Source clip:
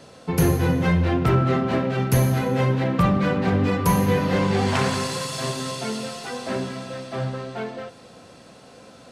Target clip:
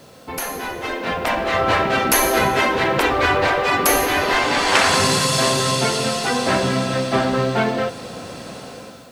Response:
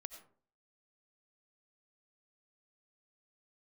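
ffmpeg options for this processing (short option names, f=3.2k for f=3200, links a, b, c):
-af "afftfilt=real='re*lt(hypot(re,im),0.251)':imag='im*lt(hypot(re,im),0.251)':win_size=1024:overlap=0.75,dynaudnorm=f=860:g=3:m=13dB,acrusher=bits=8:mix=0:aa=0.000001,volume=1dB"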